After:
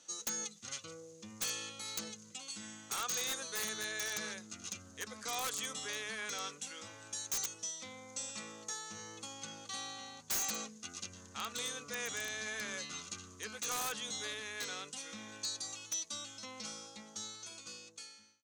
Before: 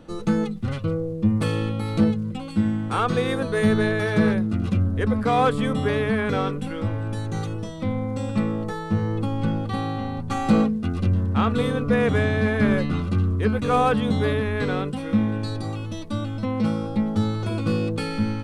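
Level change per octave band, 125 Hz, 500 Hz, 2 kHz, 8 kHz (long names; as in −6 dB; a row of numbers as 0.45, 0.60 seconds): −36.0, −24.5, −12.5, +10.0 decibels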